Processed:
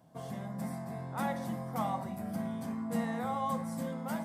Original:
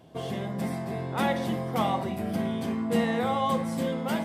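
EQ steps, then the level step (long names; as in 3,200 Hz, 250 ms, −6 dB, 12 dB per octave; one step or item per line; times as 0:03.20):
high-pass filter 130 Hz 12 dB per octave
parametric band 390 Hz −14 dB 0.87 octaves
parametric band 3,000 Hz −13.5 dB 1.3 octaves
−3.0 dB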